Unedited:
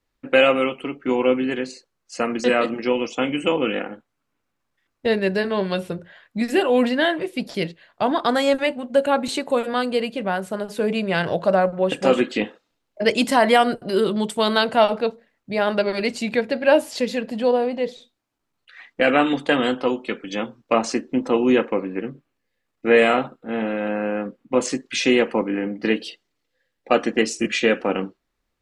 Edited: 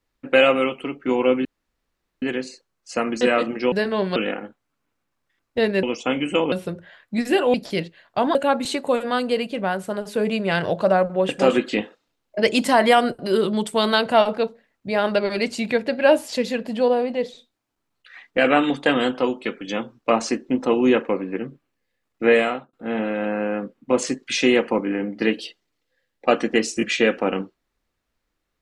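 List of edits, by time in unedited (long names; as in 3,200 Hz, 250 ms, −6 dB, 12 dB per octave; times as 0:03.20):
0:01.45: splice in room tone 0.77 s
0:02.95–0:03.64: swap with 0:05.31–0:05.75
0:06.77–0:07.38: remove
0:08.19–0:08.98: remove
0:22.90–0:23.36: fade out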